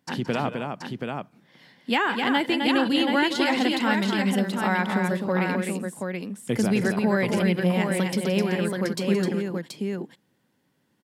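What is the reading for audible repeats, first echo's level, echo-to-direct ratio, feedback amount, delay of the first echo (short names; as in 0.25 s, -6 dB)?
3, -13.0 dB, -1.5 dB, no steady repeat, 0.171 s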